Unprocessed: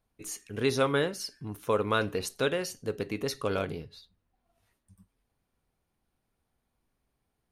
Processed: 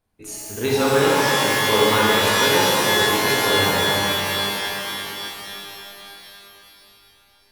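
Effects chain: pitch-shifted reverb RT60 3.6 s, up +12 st, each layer -2 dB, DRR -7 dB; trim +1.5 dB

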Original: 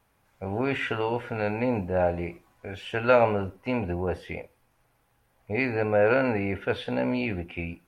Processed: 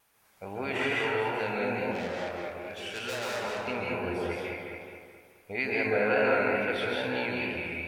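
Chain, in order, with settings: on a send: feedback echo behind a low-pass 214 ms, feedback 44%, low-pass 3.6 kHz, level -6 dB; 1.91–3.68 s: on the sum: valve stage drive 29 dB, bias 0.4; treble shelf 2.3 kHz +11 dB; plate-style reverb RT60 1.1 s, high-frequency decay 0.5×, pre-delay 120 ms, DRR -3 dB; vibrato 2.3 Hz 32 cents; in parallel at -2.5 dB: compression, threshold -32 dBFS, peak gain reduction 18.5 dB; on the sum: bass shelf 170 Hz -11.5 dB; trim -9 dB

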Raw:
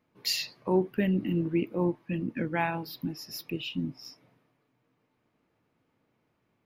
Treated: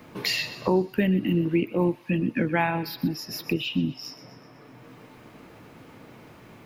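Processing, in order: feedback echo behind a high-pass 124 ms, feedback 39%, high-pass 1.5 kHz, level -15 dB; three bands compressed up and down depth 70%; trim +5 dB

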